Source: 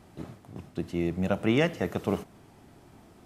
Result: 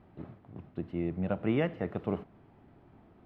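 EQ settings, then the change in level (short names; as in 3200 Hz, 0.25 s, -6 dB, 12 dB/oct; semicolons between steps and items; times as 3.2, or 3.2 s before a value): air absorption 460 m; -3.5 dB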